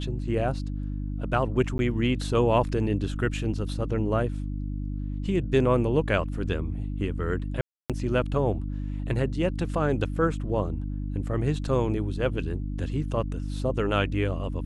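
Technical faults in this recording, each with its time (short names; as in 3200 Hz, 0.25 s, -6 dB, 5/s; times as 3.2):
hum 50 Hz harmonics 6 -31 dBFS
1.78–1.79 gap 11 ms
7.61–7.9 gap 0.287 s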